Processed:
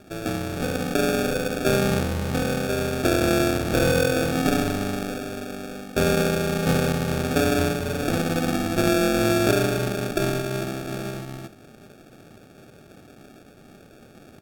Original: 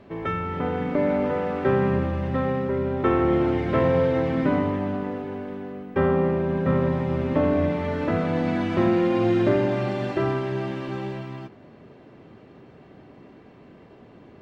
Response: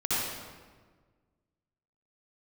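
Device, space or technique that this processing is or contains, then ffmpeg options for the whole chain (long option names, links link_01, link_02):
crushed at another speed: -af "asetrate=55125,aresample=44100,acrusher=samples=35:mix=1:aa=0.000001,asetrate=35280,aresample=44100"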